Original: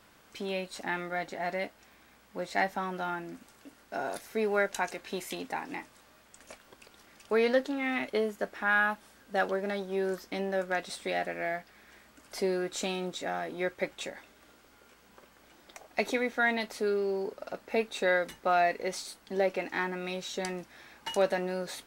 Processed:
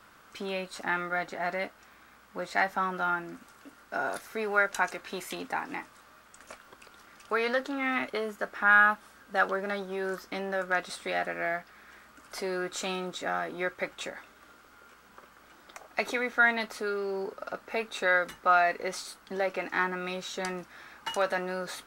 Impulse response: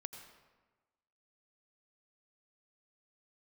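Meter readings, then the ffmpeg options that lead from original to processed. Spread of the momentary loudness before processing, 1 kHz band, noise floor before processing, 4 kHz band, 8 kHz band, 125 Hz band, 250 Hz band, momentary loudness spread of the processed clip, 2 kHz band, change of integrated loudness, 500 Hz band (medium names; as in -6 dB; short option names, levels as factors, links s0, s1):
13 LU, +4.0 dB, -60 dBFS, +0.5 dB, 0.0 dB, -1.5 dB, -2.0 dB, 16 LU, +4.5 dB, +2.0 dB, -2.0 dB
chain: -filter_complex "[0:a]equalizer=f=1300:t=o:w=0.68:g=9.5,acrossover=split=580|1500[s0][s1][s2];[s0]alimiter=level_in=2:limit=0.0631:level=0:latency=1,volume=0.501[s3];[s3][s1][s2]amix=inputs=3:normalize=0"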